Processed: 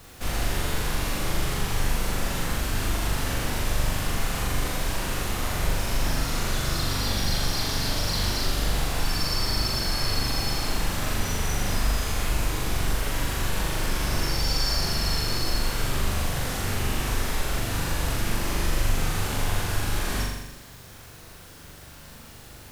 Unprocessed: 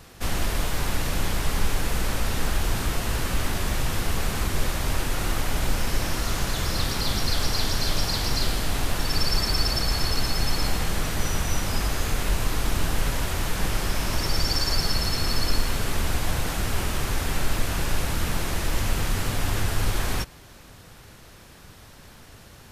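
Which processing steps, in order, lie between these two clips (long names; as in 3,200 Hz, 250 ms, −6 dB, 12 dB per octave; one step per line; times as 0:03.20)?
in parallel at −1 dB: brickwall limiter −19.5 dBFS, peak gain reduction 10 dB
on the sum: bit-depth reduction 8 bits, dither triangular
flutter between parallel walls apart 7.1 metres, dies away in 1 s
level −8 dB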